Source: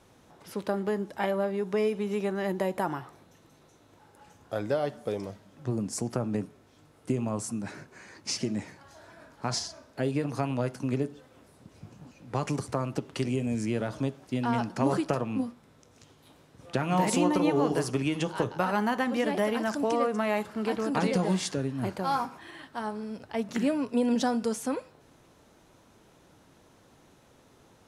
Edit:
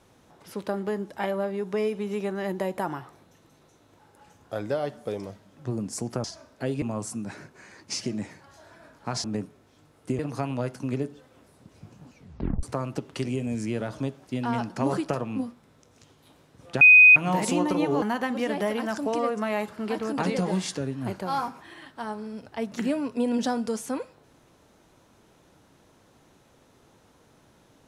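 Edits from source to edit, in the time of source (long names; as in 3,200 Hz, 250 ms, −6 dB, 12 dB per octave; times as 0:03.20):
0:06.24–0:07.19: swap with 0:09.61–0:10.19
0:12.15: tape stop 0.48 s
0:16.81: insert tone 2,500 Hz −9 dBFS 0.35 s
0:17.67–0:18.79: remove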